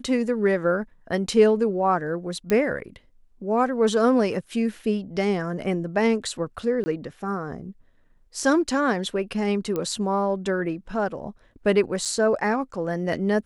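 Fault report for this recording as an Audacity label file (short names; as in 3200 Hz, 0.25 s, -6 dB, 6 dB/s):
2.500000	2.500000	pop -12 dBFS
6.840000	6.860000	gap 20 ms
9.760000	9.760000	pop -15 dBFS
12.050000	12.060000	gap 6.5 ms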